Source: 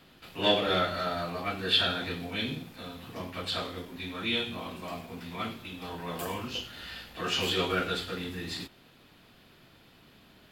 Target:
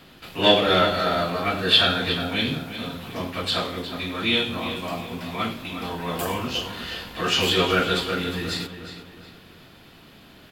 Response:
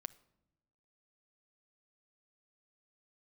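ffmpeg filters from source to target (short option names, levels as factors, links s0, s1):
-filter_complex "[0:a]asplit=2[s0][s1];[s1]adelay=361,lowpass=f=4700:p=1,volume=0.316,asplit=2[s2][s3];[s3]adelay=361,lowpass=f=4700:p=1,volume=0.4,asplit=2[s4][s5];[s5]adelay=361,lowpass=f=4700:p=1,volume=0.4,asplit=2[s6][s7];[s7]adelay=361,lowpass=f=4700:p=1,volume=0.4[s8];[s0][s2][s4][s6][s8]amix=inputs=5:normalize=0,volume=2.51"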